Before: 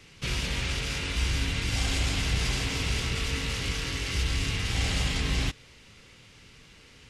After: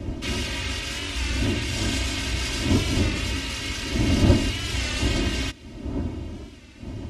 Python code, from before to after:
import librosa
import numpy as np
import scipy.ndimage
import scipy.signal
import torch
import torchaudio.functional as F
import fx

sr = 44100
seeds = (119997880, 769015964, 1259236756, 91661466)

y = fx.dmg_wind(x, sr, seeds[0], corner_hz=150.0, level_db=-25.0)
y = scipy.signal.sosfilt(scipy.signal.butter(2, 70.0, 'highpass', fs=sr, output='sos'), y)
y = y + 0.85 * np.pad(y, (int(3.2 * sr / 1000.0), 0))[:len(y)]
y = fx.record_warp(y, sr, rpm=33.33, depth_cents=100.0)